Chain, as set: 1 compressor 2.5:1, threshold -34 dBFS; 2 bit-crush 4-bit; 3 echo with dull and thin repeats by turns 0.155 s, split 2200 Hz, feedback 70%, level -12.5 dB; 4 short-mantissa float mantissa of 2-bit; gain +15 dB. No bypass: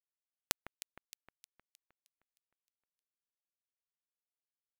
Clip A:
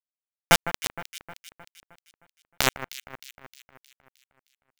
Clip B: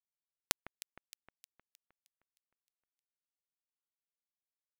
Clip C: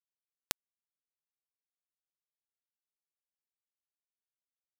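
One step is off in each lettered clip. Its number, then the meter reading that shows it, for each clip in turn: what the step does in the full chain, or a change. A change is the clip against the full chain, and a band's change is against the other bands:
1, crest factor change -20.0 dB; 4, distortion -27 dB; 3, momentary loudness spread change -20 LU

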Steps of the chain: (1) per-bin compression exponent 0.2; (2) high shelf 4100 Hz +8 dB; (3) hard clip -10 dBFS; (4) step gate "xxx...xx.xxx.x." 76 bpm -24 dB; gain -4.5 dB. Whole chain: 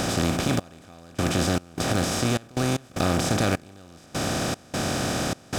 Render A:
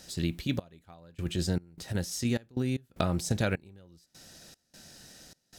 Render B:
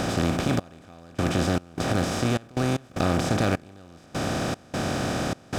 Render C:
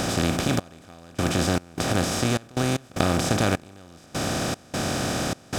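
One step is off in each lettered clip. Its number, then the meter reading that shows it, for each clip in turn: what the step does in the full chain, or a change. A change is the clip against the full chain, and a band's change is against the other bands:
1, 125 Hz band +4.5 dB; 2, 8 kHz band -6.0 dB; 3, distortion -18 dB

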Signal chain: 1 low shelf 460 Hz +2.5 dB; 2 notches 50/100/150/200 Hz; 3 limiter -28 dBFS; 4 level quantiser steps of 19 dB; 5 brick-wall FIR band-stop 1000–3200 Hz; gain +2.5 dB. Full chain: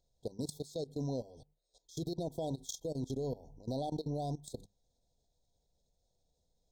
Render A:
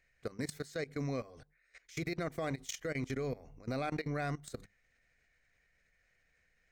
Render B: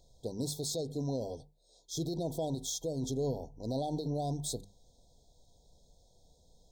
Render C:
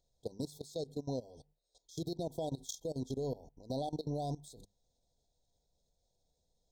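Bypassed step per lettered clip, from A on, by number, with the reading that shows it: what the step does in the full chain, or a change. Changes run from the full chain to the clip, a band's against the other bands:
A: 5, 1 kHz band +2.0 dB; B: 4, 8 kHz band +6.0 dB; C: 1, 125 Hz band -1.5 dB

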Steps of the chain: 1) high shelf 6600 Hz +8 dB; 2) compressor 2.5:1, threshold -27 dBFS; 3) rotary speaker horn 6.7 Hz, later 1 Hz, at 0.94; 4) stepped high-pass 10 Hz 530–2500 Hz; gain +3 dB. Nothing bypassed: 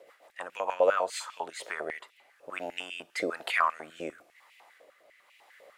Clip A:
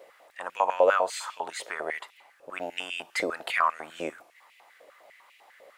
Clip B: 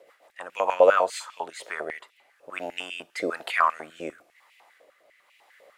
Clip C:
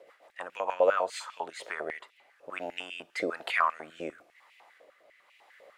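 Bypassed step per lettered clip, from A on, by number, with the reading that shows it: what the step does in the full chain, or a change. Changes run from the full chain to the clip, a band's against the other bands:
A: 3, crest factor change -2.0 dB; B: 2, momentary loudness spread change +4 LU; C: 1, 8 kHz band -4.5 dB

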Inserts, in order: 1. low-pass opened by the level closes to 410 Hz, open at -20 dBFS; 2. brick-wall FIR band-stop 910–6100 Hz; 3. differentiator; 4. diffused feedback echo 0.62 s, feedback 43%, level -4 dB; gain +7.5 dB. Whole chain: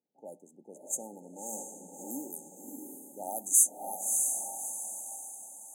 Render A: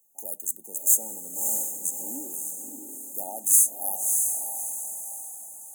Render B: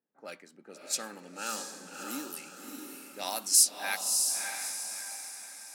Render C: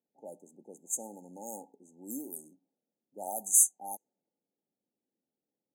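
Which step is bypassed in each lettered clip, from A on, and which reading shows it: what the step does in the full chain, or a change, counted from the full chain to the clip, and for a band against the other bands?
1, 8 kHz band +5.5 dB; 2, 1 kHz band +2.5 dB; 4, echo-to-direct -3.0 dB to none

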